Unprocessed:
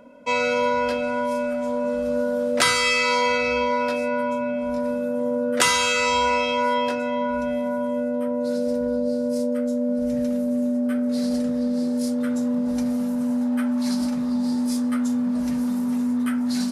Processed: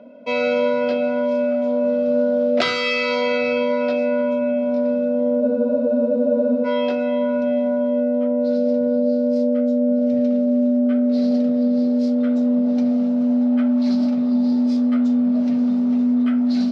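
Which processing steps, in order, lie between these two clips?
loudspeaker in its box 150–4,500 Hz, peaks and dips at 230 Hz +7 dB, 390 Hz +5 dB, 650 Hz +10 dB, 980 Hz −7 dB, 1,700 Hz −6 dB
frozen spectrum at 0:05.44, 1.22 s

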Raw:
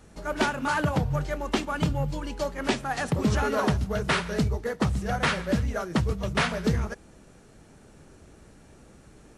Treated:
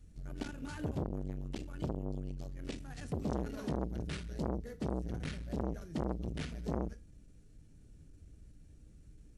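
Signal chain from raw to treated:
guitar amp tone stack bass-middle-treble 10-0-1
feedback delay network reverb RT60 0.33 s, low-frequency decay 1.05×, high-frequency decay 0.85×, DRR 9 dB
saturating transformer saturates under 570 Hz
level +7 dB

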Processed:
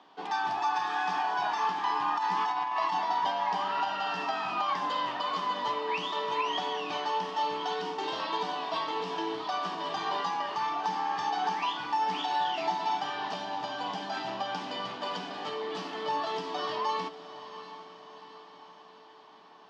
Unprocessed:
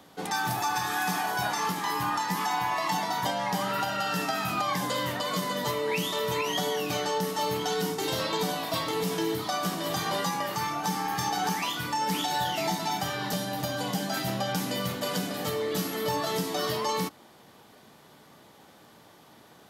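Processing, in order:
loudspeaker in its box 420–4,200 Hz, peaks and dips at 530 Hz −10 dB, 990 Hz +5 dB, 1,400 Hz −5 dB, 2,100 Hz −7 dB, 3,900 Hz −6 dB
feedback delay with all-pass diffusion 732 ms, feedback 55%, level −13 dB
0:02.18–0:02.93: compressor whose output falls as the input rises −29 dBFS, ratio −0.5

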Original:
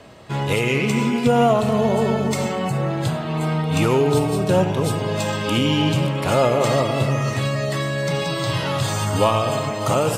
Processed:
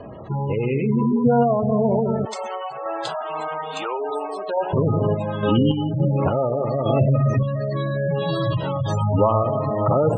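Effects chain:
0:02.25–0:04.73: high-pass filter 760 Hz 12 dB per octave
gate on every frequency bin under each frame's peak −15 dB strong
low-pass filter 5,200 Hz 12 dB per octave
parametric band 2,200 Hz −11.5 dB 0.75 octaves
downward compressor 2 to 1, threshold −26 dBFS, peak gain reduction 7.5 dB
sample-and-hold tremolo
level +8.5 dB

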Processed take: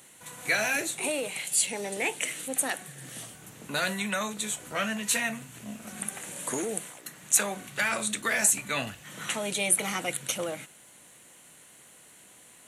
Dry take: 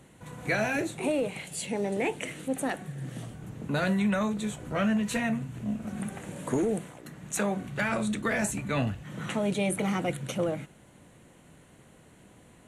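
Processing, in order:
spectral tilt +4 dB per octave

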